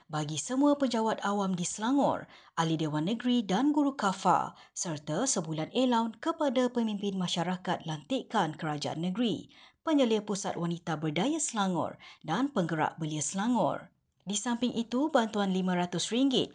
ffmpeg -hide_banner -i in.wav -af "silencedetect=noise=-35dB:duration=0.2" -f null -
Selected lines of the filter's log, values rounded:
silence_start: 2.20
silence_end: 2.58 | silence_duration: 0.38
silence_start: 4.48
silence_end: 4.77 | silence_duration: 0.29
silence_start: 9.40
silence_end: 9.87 | silence_duration: 0.47
silence_start: 11.91
silence_end: 12.28 | silence_duration: 0.37
silence_start: 13.78
silence_end: 14.28 | silence_duration: 0.49